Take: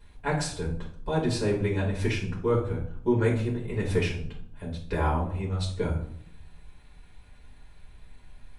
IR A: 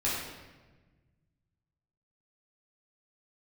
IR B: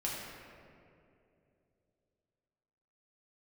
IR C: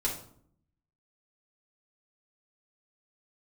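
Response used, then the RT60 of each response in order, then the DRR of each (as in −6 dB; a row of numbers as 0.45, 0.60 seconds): C; 1.3, 2.7, 0.60 seconds; −8.0, −5.5, −4.5 decibels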